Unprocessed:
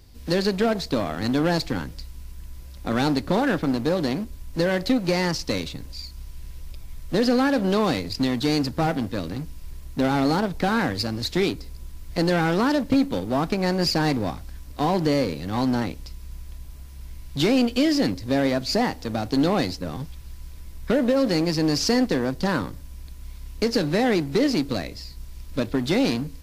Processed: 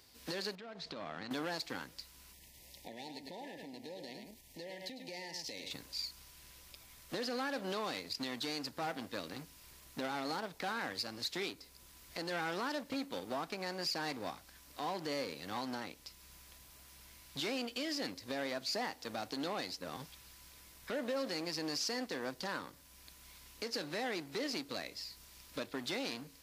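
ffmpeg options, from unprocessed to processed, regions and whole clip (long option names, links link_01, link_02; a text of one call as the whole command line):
ffmpeg -i in.wav -filter_complex "[0:a]asettb=1/sr,asplit=3[link_01][link_02][link_03];[link_01]atrim=end=0.554[link_04];[link_02]atrim=start=0.55:end=1.31,asetpts=PTS-STARTPTS,afade=type=in:duration=0.004:curve=qsin,afade=type=out:start_time=0.756:duration=0.004:curve=qsin,equalizer=frequency=160:width=1.9:gain=7,acompressor=threshold=-30dB:ratio=12:attack=3.2:release=140:knee=1:detection=peak,lowpass=4200[link_05];[link_03]atrim=start=1.306[link_06];[link_04][link_05]acrossfade=duration=0.004:curve1=hsin:curve2=qsin[link_07];[link_07][link_06]acrossfade=duration=0.004:curve1=qsin:curve2=hsin,asettb=1/sr,asplit=3[link_08][link_09][link_10];[link_08]atrim=end=2.334[link_11];[link_09]atrim=start=2.33:end=5.71,asetpts=PTS-STARTPTS,afade=type=in:duration=0.004:curve=qsin,afade=type=out:start_time=3.376:duration=0.004:curve=qsin,aecho=1:1:102:0.376,atrim=end_sample=149058,acompressor=threshold=-34dB:ratio=8:attack=3.2:release=140:knee=1:detection=peak,asuperstop=centerf=1300:order=20:qfactor=1.7[link_12];[link_10]atrim=start=5.706[link_13];[link_11][link_12]acrossfade=duration=0.004:curve1=hsin:curve2=qsin[link_14];[link_14][link_13]acrossfade=duration=0.004:curve1=qsin:curve2=hsin,highpass=frequency=900:poles=1,alimiter=level_in=2.5dB:limit=-24dB:level=0:latency=1:release=487,volume=-2.5dB,volume=-2dB" out.wav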